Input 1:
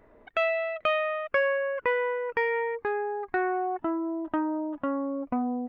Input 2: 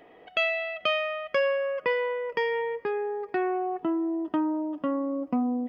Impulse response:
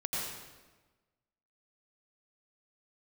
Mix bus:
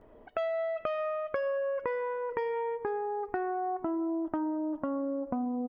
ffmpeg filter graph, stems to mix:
-filter_complex "[0:a]lowpass=1100,volume=1.06,asplit=2[s0][s1];[s1]volume=0.133[s2];[1:a]aemphasis=mode=production:type=75kf,volume=-1,adelay=13,volume=0.106[s3];[2:a]atrim=start_sample=2205[s4];[s2][s4]afir=irnorm=-1:irlink=0[s5];[s0][s3][s5]amix=inputs=3:normalize=0,acompressor=threshold=0.0355:ratio=6"

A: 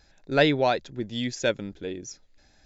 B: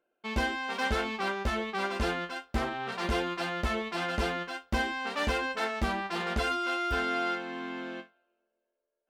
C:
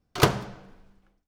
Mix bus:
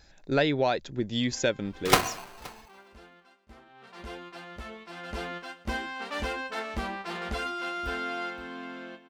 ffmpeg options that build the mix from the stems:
-filter_complex "[0:a]acompressor=threshold=0.0562:ratio=3,volume=1.33[s0];[1:a]adelay=950,volume=0.708,afade=t=in:st=3.65:d=0.49:silence=0.281838,afade=t=in:st=4.95:d=0.39:silence=0.398107,asplit=2[s1][s2];[s2]volume=0.178[s3];[2:a]aeval=exprs='val(0)*sgn(sin(2*PI*880*n/s))':c=same,adelay=1700,volume=0.841,asplit=2[s4][s5];[s5]volume=0.0708[s6];[s3][s6]amix=inputs=2:normalize=0,aecho=0:1:522:1[s7];[s0][s1][s4][s7]amix=inputs=4:normalize=0"

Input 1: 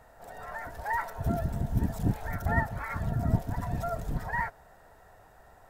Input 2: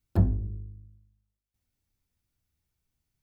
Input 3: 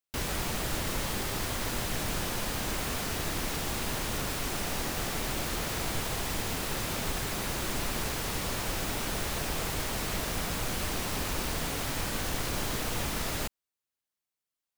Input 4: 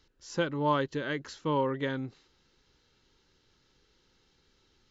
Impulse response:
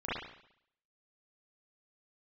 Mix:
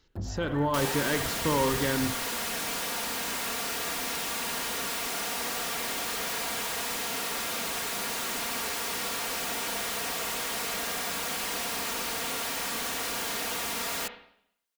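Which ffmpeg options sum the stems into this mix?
-filter_complex "[0:a]acompressor=threshold=0.0158:ratio=6,volume=0.473[s0];[1:a]asoftclip=type=tanh:threshold=0.112,volume=0.316[s1];[2:a]highpass=f=620:p=1,aecho=1:1:4.3:0.51,asoftclip=type=hard:threshold=0.0237,adelay=600,volume=0.794,asplit=2[s2][s3];[s3]volume=0.224[s4];[3:a]alimiter=level_in=1.06:limit=0.0631:level=0:latency=1:release=23,volume=0.944,volume=0.944,asplit=3[s5][s6][s7];[s6]volume=0.211[s8];[s7]apad=whole_len=251275[s9];[s0][s9]sidechaingate=range=0.0224:threshold=0.00178:ratio=16:detection=peak[s10];[4:a]atrim=start_sample=2205[s11];[s4][s8]amix=inputs=2:normalize=0[s12];[s12][s11]afir=irnorm=-1:irlink=0[s13];[s10][s1][s2][s5][s13]amix=inputs=5:normalize=0,dynaudnorm=f=190:g=5:m=1.68"

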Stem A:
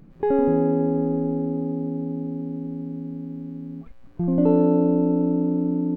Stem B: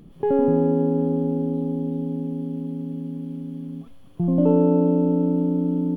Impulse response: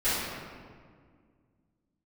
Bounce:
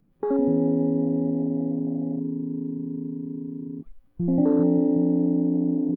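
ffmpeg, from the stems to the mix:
-filter_complex "[0:a]volume=1.06[s0];[1:a]aemphasis=mode=production:type=50fm,adelay=3.3,volume=0.211[s1];[s0][s1]amix=inputs=2:normalize=0,afwtdn=0.0794,acrossover=split=280|3000[s2][s3][s4];[s3]acompressor=threshold=0.0224:ratio=1.5[s5];[s2][s5][s4]amix=inputs=3:normalize=0"

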